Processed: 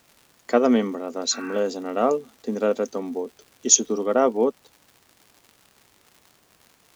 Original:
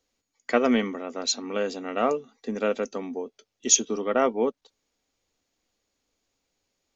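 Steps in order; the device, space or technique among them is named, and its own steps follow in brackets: spectral repair 1.34–1.56, 1100–2700 Hz after; bell 2300 Hz -11 dB 1.4 oct; vinyl LP (crackle 140/s -44 dBFS; pink noise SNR 35 dB); HPF 150 Hz 6 dB/oct; gain +5 dB

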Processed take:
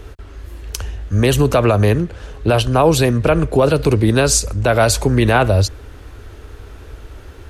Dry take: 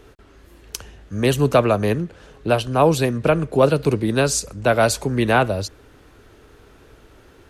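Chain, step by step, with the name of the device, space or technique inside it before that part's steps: car stereo with a boomy subwoofer (resonant low shelf 110 Hz +8.5 dB, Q 1.5; limiter -11 dBFS, peak gain reduction 8.5 dB); gain +7.5 dB

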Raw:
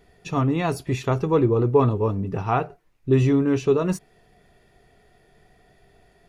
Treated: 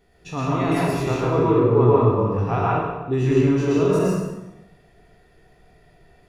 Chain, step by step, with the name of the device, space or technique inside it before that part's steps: spectral trails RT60 0.79 s; 1.52–2.18 high shelf 4400 Hz -9 dB; bathroom (reverb RT60 0.95 s, pre-delay 0.111 s, DRR -5 dB); gain -6 dB

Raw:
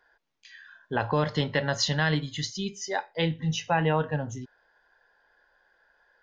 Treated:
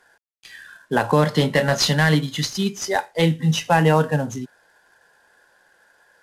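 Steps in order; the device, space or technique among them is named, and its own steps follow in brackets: early wireless headset (HPF 150 Hz 24 dB/oct; CVSD 64 kbps); low shelf 270 Hz +5 dB; 1.38–1.92 doubler 23 ms -8.5 dB; gain +7.5 dB

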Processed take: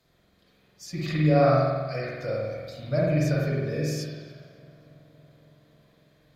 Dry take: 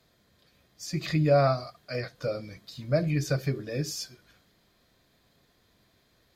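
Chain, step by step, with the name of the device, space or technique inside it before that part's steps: dub delay into a spring reverb (darkening echo 0.277 s, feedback 77%, low-pass 3700 Hz, level -23.5 dB; spring tank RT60 1.4 s, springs 46 ms, chirp 45 ms, DRR -5 dB); gain -3.5 dB

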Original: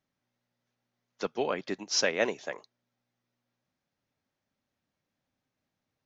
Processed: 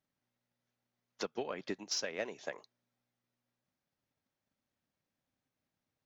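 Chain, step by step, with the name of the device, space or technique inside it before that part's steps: drum-bus smash (transient shaper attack +8 dB, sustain +2 dB; compressor 6:1, threshold -28 dBFS, peak gain reduction 11.5 dB; soft clip -18 dBFS, distortion -21 dB); gain -5 dB

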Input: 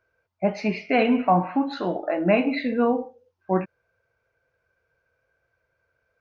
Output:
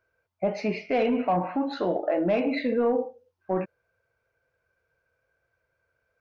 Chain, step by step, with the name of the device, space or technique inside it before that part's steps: soft clipper into limiter (soft clip -12 dBFS, distortion -19 dB; limiter -18 dBFS, peak gain reduction 5.5 dB); dynamic EQ 500 Hz, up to +7 dB, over -41 dBFS, Q 1.4; gain -2.5 dB

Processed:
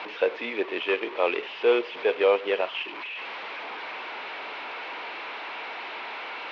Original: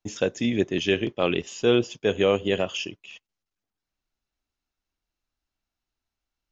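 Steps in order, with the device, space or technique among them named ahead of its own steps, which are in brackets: digital answering machine (BPF 340–3400 Hz; delta modulation 32 kbps, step -31.5 dBFS; speaker cabinet 410–3400 Hz, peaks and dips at 460 Hz +5 dB, 950 Hz +7 dB, 2300 Hz +6 dB); 2.61–3.06 bell 480 Hz -12.5 dB 0.21 oct

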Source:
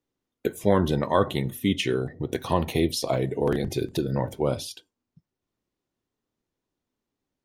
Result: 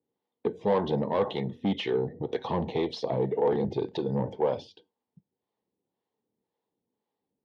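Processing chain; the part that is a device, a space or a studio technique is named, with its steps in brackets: 4.17–4.69 notch 3900 Hz, Q 5; guitar amplifier with harmonic tremolo (harmonic tremolo 1.9 Hz, depth 70%, crossover 480 Hz; soft clip -24.5 dBFS, distortion -10 dB; speaker cabinet 110–4100 Hz, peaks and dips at 200 Hz +6 dB, 460 Hz +10 dB, 850 Hz +10 dB, 1400 Hz -8 dB, 2500 Hz -5 dB)

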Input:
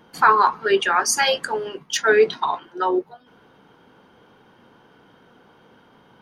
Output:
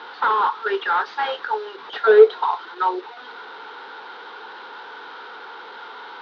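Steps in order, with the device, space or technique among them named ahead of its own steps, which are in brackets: digital answering machine (BPF 360–3400 Hz; delta modulation 32 kbps, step -32.5 dBFS; speaker cabinet 410–4000 Hz, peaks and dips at 430 Hz +5 dB, 620 Hz -8 dB, 890 Hz +8 dB, 1400 Hz +9 dB, 2500 Hz -4 dB, 3800 Hz +7 dB); 1.88–2.44 band shelf 520 Hz +9 dB 1.1 oct; gain -3 dB

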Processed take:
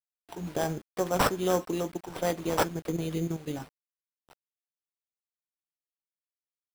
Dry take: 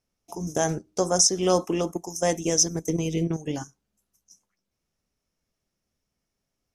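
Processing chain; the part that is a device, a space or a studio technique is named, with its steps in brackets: early 8-bit sampler (sample-rate reducer 6700 Hz, jitter 0%; bit-crush 8-bit); gain -5 dB

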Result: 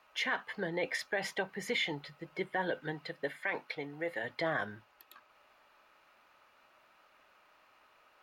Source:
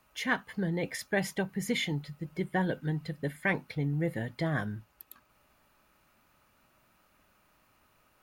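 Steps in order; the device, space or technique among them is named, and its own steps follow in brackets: DJ mixer with the lows and highs turned down (three-band isolator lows -19 dB, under 390 Hz, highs -15 dB, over 5000 Hz; limiter -27.5 dBFS, peak gain reduction 11.5 dB); 2.92–4.23 HPF 130 Hz -> 530 Hz 6 dB/oct; gain +4.5 dB

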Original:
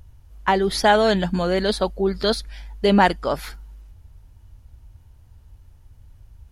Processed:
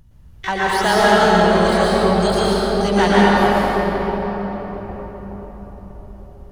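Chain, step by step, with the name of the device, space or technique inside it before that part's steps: shimmer-style reverb (harmoniser +12 st -7 dB; reverb RT60 5.2 s, pre-delay 0.109 s, DRR -8.5 dB); gain -4.5 dB

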